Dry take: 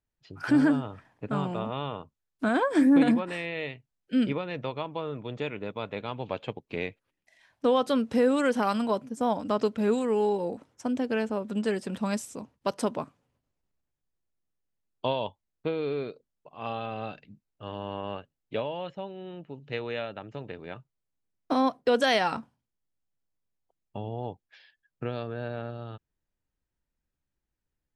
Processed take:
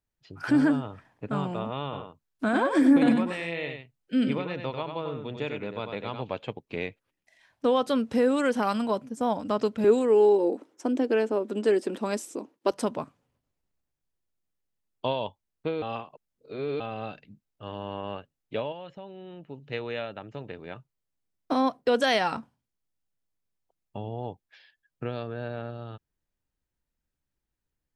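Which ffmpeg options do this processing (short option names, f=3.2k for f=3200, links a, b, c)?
-filter_complex "[0:a]asettb=1/sr,asplit=3[a][b][c];[a]atrim=end=1.834[d];[b]atrim=start=1.83:end=6.24,asetpts=PTS-STARTPTS,afade=t=in:d=0.004:c=qsin,afade=t=out:st=4.406:d=0.004:c=qsin,aecho=1:1:95:0.501,atrim=end_sample=194481[e];[c]atrim=start=6.236[f];[d][e]acrossfade=d=0.004:c1=hsin:c2=qsin[g];[g][f]acrossfade=d=0.004:c1=qsin:c2=hsin,asettb=1/sr,asplit=3[h][i][j];[h]atrim=end=9.844[k];[i]atrim=start=9.84:end=12.71,asetpts=PTS-STARTPTS,afade=t=in:d=0.004:c=qsin,afade=t=out:st=2.866:d=0.004:c=qsin,highpass=f=330:t=q:w=3.6[l];[j]atrim=start=12.706[m];[k][l]acrossfade=d=0.004:c1=hsin:c2=qsin[n];[n][m]acrossfade=d=0.004:c1=qsin:c2=hsin,asettb=1/sr,asplit=3[o][p][q];[o]atrim=end=18.724[r];[p]atrim=start=18.72:end=19.49,asetpts=PTS-STARTPTS,afade=t=in:d=0.004:c=qsin,afade=t=out:st=0.766:d=0.004:c=qsin,acompressor=threshold=-41dB:ratio=2:attack=3.2:release=140:knee=1:detection=peak[s];[q]atrim=start=19.486[t];[r][s]acrossfade=d=0.004:c1=hsin:c2=qsin[u];[u][t]acrossfade=d=0.004:c1=qsin:c2=hsin,asplit=3[v][w][x];[v]atrim=end=15.822[y];[w]atrim=start=15.818:end=16.802,asetpts=PTS-STARTPTS,areverse[z];[x]atrim=start=16.798[aa];[y][z]acrossfade=d=0.004:c1=hsin:c2=hsin[ab];[ab][aa]acrossfade=d=0.004:c1=hsin:c2=hsin"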